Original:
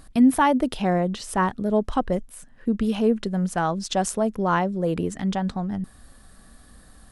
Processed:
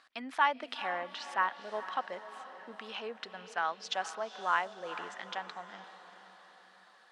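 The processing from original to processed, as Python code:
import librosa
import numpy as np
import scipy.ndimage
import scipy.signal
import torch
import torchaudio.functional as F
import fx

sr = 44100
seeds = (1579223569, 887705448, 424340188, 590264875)

y = scipy.signal.sosfilt(scipy.signal.butter(2, 1300.0, 'highpass', fs=sr, output='sos'), x)
y = fx.air_absorb(y, sr, metres=190.0)
y = fx.echo_diffused(y, sr, ms=461, feedback_pct=53, wet_db=-12.5)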